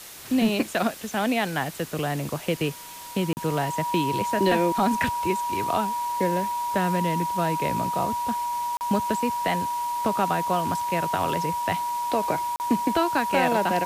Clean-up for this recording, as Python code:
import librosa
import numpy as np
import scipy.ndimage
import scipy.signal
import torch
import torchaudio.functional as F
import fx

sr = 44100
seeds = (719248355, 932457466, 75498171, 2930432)

y = fx.notch(x, sr, hz=960.0, q=30.0)
y = fx.fix_interpolate(y, sr, at_s=(3.33, 8.77, 12.56), length_ms=39.0)
y = fx.noise_reduce(y, sr, print_start_s=2.67, print_end_s=3.17, reduce_db=30.0)